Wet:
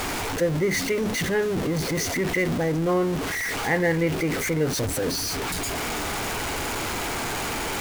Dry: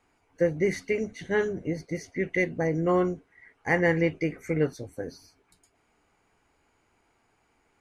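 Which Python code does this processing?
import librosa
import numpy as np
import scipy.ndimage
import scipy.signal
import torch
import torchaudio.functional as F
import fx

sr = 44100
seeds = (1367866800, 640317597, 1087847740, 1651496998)

p1 = x + 0.5 * 10.0 ** (-28.5 / 20.0) * np.sign(x)
p2 = fx.over_compress(p1, sr, threshold_db=-30.0, ratio=-0.5)
p3 = p1 + F.gain(torch.from_numpy(p2), -2.0).numpy()
y = F.gain(torch.from_numpy(p3), -1.0).numpy()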